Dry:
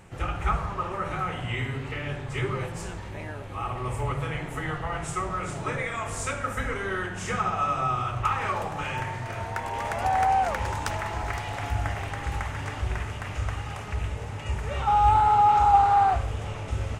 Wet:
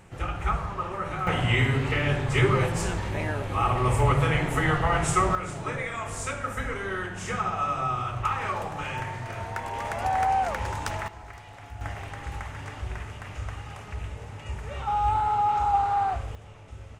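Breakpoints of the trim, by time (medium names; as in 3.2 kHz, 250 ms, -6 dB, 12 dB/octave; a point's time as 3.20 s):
-1 dB
from 1.27 s +7.5 dB
from 5.35 s -1.5 dB
from 11.08 s -13 dB
from 11.81 s -5 dB
from 16.35 s -13.5 dB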